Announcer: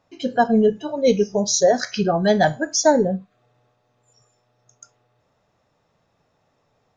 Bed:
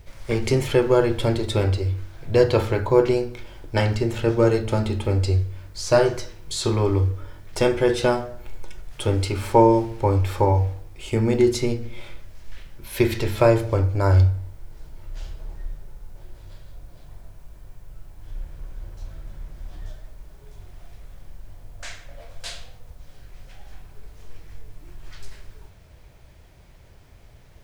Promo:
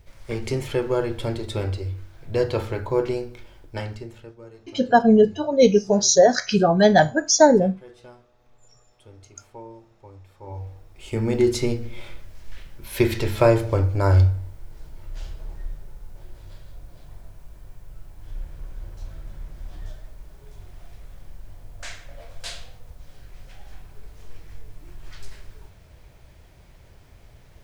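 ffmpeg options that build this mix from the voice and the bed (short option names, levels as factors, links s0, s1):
-filter_complex "[0:a]adelay=4550,volume=1.26[s0];[1:a]volume=11.2,afade=t=out:st=3.38:d=0.96:silence=0.0891251,afade=t=in:st=10.41:d=1.19:silence=0.0473151[s1];[s0][s1]amix=inputs=2:normalize=0"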